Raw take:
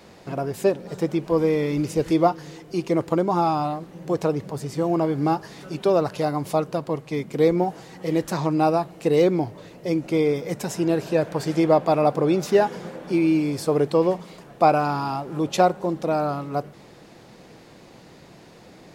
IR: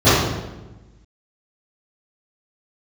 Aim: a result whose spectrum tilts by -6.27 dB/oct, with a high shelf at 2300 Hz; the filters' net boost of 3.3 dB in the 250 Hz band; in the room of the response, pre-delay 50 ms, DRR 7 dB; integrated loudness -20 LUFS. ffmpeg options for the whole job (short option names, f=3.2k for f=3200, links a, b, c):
-filter_complex "[0:a]equalizer=f=250:t=o:g=5,highshelf=f=2.3k:g=4,asplit=2[a][b];[1:a]atrim=start_sample=2205,adelay=50[c];[b][c]afir=irnorm=-1:irlink=0,volume=-34.5dB[d];[a][d]amix=inputs=2:normalize=0,volume=-1.5dB"